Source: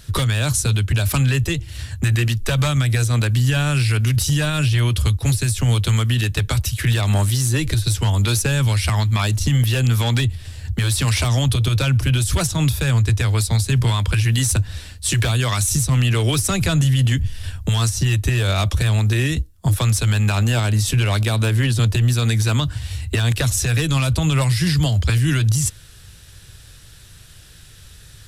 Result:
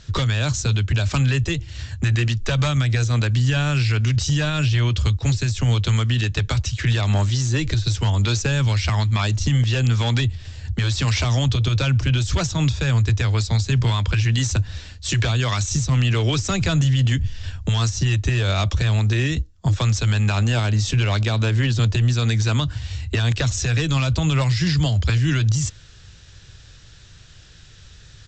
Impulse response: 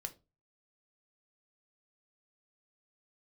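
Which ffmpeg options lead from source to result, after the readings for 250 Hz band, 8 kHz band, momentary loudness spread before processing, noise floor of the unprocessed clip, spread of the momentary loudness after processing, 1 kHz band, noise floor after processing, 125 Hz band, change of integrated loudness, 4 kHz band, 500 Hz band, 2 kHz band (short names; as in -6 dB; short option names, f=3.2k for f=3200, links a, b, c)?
-1.5 dB, -6.0 dB, 4 LU, -44 dBFS, 4 LU, -1.5 dB, -46 dBFS, -1.5 dB, -2.0 dB, -1.5 dB, -1.5 dB, -1.5 dB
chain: -af "aresample=16000,aresample=44100,volume=-1.5dB"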